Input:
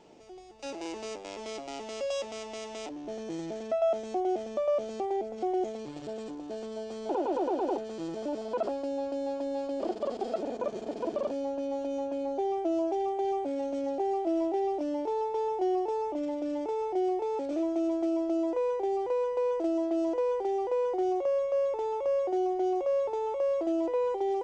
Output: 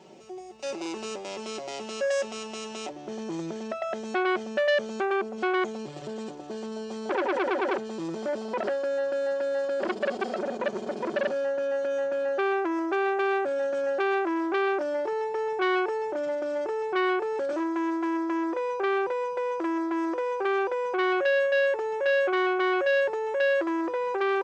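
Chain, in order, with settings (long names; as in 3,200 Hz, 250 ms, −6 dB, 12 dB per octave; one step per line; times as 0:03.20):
high-pass filter 69 Hz 24 dB per octave
comb filter 5.3 ms, depth 76%
saturating transformer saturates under 1,600 Hz
level +3.5 dB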